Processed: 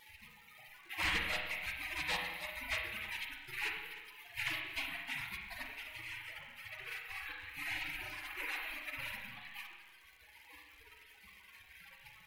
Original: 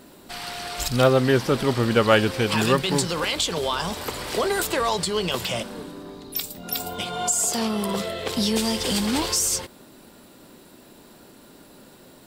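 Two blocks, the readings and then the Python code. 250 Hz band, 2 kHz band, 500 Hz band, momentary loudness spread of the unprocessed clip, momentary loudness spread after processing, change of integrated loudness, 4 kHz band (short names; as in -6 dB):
-31.5 dB, -8.0 dB, -31.5 dB, 12 LU, 20 LU, -17.0 dB, -16.5 dB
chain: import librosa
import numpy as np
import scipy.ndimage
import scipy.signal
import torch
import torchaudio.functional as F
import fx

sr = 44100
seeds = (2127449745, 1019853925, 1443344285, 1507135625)

y = fx.bin_compress(x, sr, power=0.4)
y = fx.dynamic_eq(y, sr, hz=2500.0, q=1.6, threshold_db=-37.0, ratio=4.0, max_db=-8)
y = fx.hum_notches(y, sr, base_hz=60, count=8)
y = fx.spec_gate(y, sr, threshold_db=-30, keep='weak')
y = fx.notch(y, sr, hz=3500.0, q=28.0)
y = y + 10.0 ** (-13.5 / 20.0) * np.pad(y, (int(304 * sr / 1000.0), 0))[:len(y)]
y = fx.dereverb_blind(y, sr, rt60_s=1.7)
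y = fx.air_absorb(y, sr, metres=480.0)
y = 10.0 ** (-38.5 / 20.0) * np.tanh(y / 10.0 ** (-38.5 / 20.0))
y = fx.dmg_crackle(y, sr, seeds[0], per_s=210.0, level_db=-64.0)
y = fx.rev_spring(y, sr, rt60_s=1.2, pass_ms=(34, 42), chirp_ms=25, drr_db=1.0)
y = y * 10.0 ** (11.0 / 20.0)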